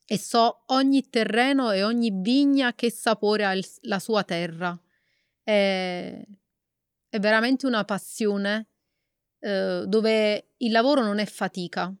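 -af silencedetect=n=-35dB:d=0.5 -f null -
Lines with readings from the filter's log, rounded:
silence_start: 4.76
silence_end: 5.48 | silence_duration: 0.72
silence_start: 6.24
silence_end: 7.13 | silence_duration: 0.89
silence_start: 8.62
silence_end: 9.43 | silence_duration: 0.81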